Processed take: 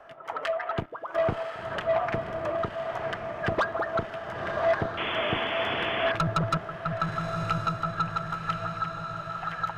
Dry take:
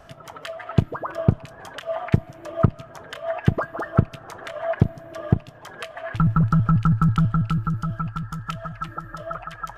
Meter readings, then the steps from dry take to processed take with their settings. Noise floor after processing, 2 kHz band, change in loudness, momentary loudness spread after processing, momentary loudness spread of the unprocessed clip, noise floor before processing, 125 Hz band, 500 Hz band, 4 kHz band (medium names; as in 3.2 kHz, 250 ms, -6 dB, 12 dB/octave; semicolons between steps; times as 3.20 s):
-40 dBFS, +4.5 dB, -5.0 dB, 7 LU, 17 LU, -45 dBFS, -13.5 dB, +2.0 dB, +7.5 dB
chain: three-band isolator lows -18 dB, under 350 Hz, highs -17 dB, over 2.7 kHz; random-step tremolo, depth 90%; saturation -27.5 dBFS, distortion -9 dB; echo that smears into a reverb 1043 ms, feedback 51%, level -5 dB; painted sound noise, 4.97–6.12 s, 200–3500 Hz -39 dBFS; trim +8 dB